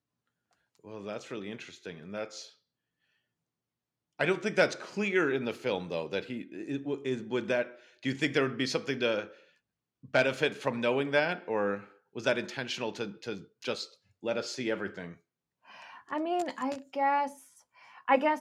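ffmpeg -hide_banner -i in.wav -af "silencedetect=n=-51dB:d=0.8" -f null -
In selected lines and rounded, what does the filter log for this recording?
silence_start: 2.51
silence_end: 4.19 | silence_duration: 1.68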